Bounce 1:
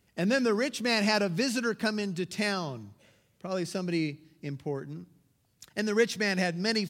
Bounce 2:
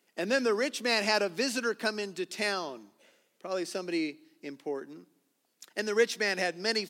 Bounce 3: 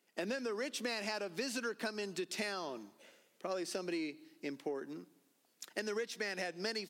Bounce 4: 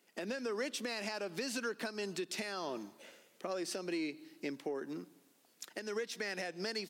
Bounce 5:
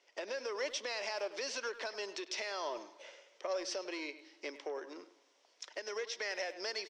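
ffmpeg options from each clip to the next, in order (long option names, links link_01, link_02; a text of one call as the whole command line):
ffmpeg -i in.wav -af "highpass=frequency=270:width=0.5412,highpass=frequency=270:width=1.3066" out.wav
ffmpeg -i in.wav -filter_complex "[0:a]dynaudnorm=framelen=120:gausssize=3:maxgain=6dB,asplit=2[link_01][link_02];[link_02]asoftclip=type=hard:threshold=-23dB,volume=-11dB[link_03];[link_01][link_03]amix=inputs=2:normalize=0,acompressor=threshold=-28dB:ratio=12,volume=-7dB" out.wav
ffmpeg -i in.wav -af "alimiter=level_in=9.5dB:limit=-24dB:level=0:latency=1:release=395,volume=-9.5dB,volume=5dB" out.wav
ffmpeg -i in.wav -filter_complex "[0:a]asoftclip=type=tanh:threshold=-30dB,highpass=frequency=370:width=0.5412,highpass=frequency=370:width=1.3066,equalizer=frequency=580:width_type=q:width=4:gain=7,equalizer=frequency=980:width_type=q:width=4:gain=7,equalizer=frequency=2100:width_type=q:width=4:gain=5,equalizer=frequency=3200:width_type=q:width=4:gain=5,equalizer=frequency=5600:width_type=q:width=4:gain=9,lowpass=frequency=6400:width=0.5412,lowpass=frequency=6400:width=1.3066,asplit=2[link_01][link_02];[link_02]adelay=100,highpass=300,lowpass=3400,asoftclip=type=hard:threshold=-32dB,volume=-13dB[link_03];[link_01][link_03]amix=inputs=2:normalize=0,volume=-1.5dB" out.wav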